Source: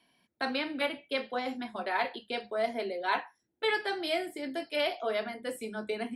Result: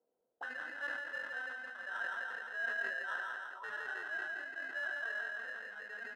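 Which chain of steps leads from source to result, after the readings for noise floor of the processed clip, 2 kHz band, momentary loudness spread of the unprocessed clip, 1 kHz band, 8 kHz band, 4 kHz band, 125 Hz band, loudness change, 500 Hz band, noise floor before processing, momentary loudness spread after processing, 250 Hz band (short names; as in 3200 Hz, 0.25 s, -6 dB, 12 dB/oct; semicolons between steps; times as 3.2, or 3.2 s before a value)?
-83 dBFS, 0.0 dB, 7 LU, -12.5 dB, under -10 dB, -17.0 dB, n/a, -6.5 dB, -19.0 dB, -78 dBFS, 7 LU, -25.5 dB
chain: dynamic EQ 540 Hz, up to +6 dB, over -46 dBFS, Q 3.1; feedback echo 0.168 s, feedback 53%, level -3 dB; sample-rate reducer 2300 Hz, jitter 0%; auto-wah 470–1600 Hz, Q 7.1, up, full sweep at -31 dBFS; sustainer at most 30 dB/s; gain -1.5 dB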